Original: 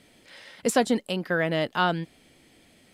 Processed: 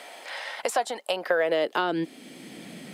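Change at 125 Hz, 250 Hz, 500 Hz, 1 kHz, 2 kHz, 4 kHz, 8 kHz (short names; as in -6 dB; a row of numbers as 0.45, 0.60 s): -11.5, -5.5, +1.0, -0.5, -1.0, -0.5, -3.0 dB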